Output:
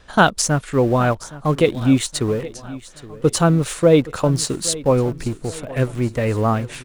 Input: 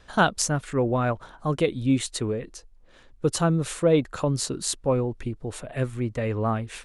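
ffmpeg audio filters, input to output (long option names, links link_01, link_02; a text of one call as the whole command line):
ffmpeg -i in.wav -filter_complex "[0:a]asplit=2[link_01][link_02];[link_02]aeval=exprs='val(0)*gte(abs(val(0)),0.0335)':channel_layout=same,volume=-10dB[link_03];[link_01][link_03]amix=inputs=2:normalize=0,aecho=1:1:819|1638|2457|3276:0.126|0.0604|0.029|0.0139,alimiter=level_in=5.5dB:limit=-1dB:release=50:level=0:latency=1,volume=-1dB" out.wav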